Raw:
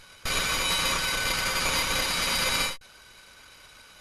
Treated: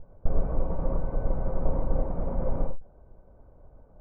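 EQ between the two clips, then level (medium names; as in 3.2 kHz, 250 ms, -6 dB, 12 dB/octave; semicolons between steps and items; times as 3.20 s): four-pole ladder low-pass 800 Hz, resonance 45%; tilt EQ -4 dB/octave; +3.0 dB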